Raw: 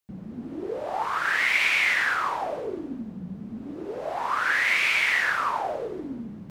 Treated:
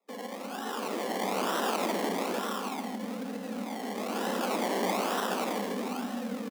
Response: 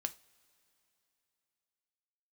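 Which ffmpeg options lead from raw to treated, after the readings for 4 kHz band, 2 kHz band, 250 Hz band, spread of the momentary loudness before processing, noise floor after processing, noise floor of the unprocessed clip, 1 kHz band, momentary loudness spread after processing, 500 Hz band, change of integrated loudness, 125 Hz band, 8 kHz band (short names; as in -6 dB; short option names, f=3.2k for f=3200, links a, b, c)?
-6.0 dB, -16.0 dB, +2.5 dB, 17 LU, -40 dBFS, -41 dBFS, -3.5 dB, 8 LU, +1.0 dB, -8.5 dB, n/a, +1.0 dB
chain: -filter_complex "[0:a]lowpass=f=8.7k:w=0.5412,lowpass=f=8.7k:w=1.3066,afftfilt=real='re*lt(hypot(re,im),0.0447)':imag='im*lt(hypot(re,im),0.0447)':win_size=1024:overlap=0.75,asubboost=boost=4:cutoff=100,aecho=1:1:3.3:0.75,acrossover=split=2000[a][b];[a]volume=35.5dB,asoftclip=hard,volume=-35.5dB[c];[b]flanger=delay=18:depth=2.1:speed=0.78[d];[c][d]amix=inputs=2:normalize=0,acrusher=samples=29:mix=1:aa=0.000001:lfo=1:lforange=17.4:lforate=1.1,afreqshift=180,asplit=2[e][f];[f]aecho=0:1:159:0.335[g];[e][g]amix=inputs=2:normalize=0,volume=8.5dB"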